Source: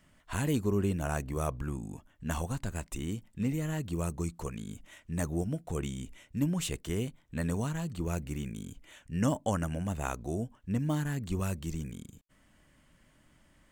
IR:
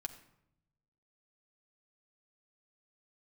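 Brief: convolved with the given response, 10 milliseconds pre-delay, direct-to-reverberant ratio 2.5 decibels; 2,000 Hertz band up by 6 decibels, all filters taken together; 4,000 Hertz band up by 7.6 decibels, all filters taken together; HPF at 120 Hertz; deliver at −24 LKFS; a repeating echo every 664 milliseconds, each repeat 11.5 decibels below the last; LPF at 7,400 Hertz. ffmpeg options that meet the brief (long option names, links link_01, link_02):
-filter_complex "[0:a]highpass=120,lowpass=7400,equalizer=frequency=2000:width_type=o:gain=6,equalizer=frequency=4000:width_type=o:gain=8,aecho=1:1:664|1328|1992:0.266|0.0718|0.0194,asplit=2[link_01][link_02];[1:a]atrim=start_sample=2205,adelay=10[link_03];[link_02][link_03]afir=irnorm=-1:irlink=0,volume=-0.5dB[link_04];[link_01][link_04]amix=inputs=2:normalize=0,volume=8.5dB"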